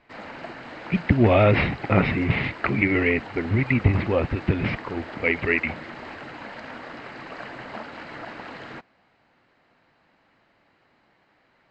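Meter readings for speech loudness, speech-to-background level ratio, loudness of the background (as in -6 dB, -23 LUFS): -22.5 LUFS, 15.5 dB, -38.0 LUFS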